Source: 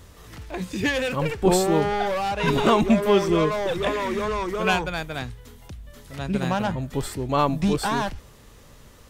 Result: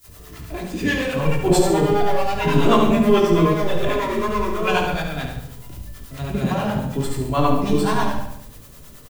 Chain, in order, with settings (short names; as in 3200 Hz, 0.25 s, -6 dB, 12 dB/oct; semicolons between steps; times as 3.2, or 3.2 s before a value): gate with hold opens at -39 dBFS; added noise blue -49 dBFS; shoebox room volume 830 m³, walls furnished, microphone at 3.1 m; harmonic tremolo 9.3 Hz, depth 70%, crossover 540 Hz; on a send: feedback echo 71 ms, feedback 49%, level -7 dB